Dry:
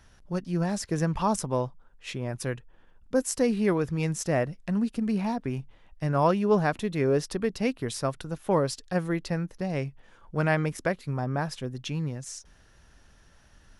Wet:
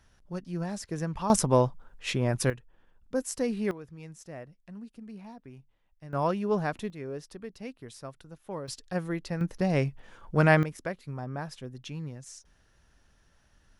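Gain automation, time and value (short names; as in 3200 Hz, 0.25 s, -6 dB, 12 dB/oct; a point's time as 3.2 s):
-6 dB
from 1.3 s +5.5 dB
from 2.5 s -5 dB
from 3.71 s -17 dB
from 6.13 s -5 dB
from 6.9 s -13.5 dB
from 8.68 s -4 dB
from 9.41 s +4 dB
from 10.63 s -7 dB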